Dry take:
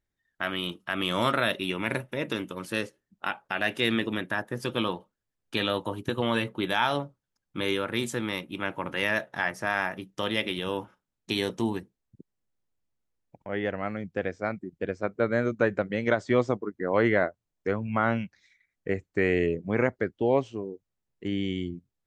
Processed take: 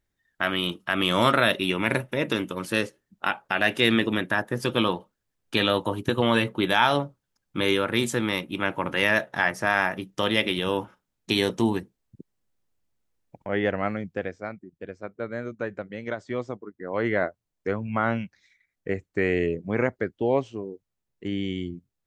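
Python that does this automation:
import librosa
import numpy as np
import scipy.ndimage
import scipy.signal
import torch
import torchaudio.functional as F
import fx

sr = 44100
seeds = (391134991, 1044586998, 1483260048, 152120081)

y = fx.gain(x, sr, db=fx.line((13.86, 5.0), (14.64, -7.0), (16.78, -7.0), (17.26, 0.5)))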